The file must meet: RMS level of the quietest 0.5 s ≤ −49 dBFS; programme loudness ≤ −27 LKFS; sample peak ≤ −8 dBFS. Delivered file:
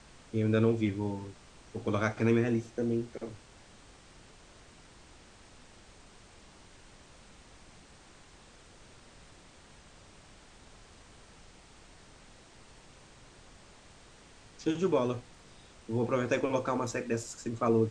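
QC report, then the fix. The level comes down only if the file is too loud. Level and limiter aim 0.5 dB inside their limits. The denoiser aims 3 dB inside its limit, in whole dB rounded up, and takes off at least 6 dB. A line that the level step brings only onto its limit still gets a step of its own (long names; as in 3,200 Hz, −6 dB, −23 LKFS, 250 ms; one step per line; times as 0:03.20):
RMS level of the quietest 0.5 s −56 dBFS: in spec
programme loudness −31.5 LKFS: in spec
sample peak −14.5 dBFS: in spec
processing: no processing needed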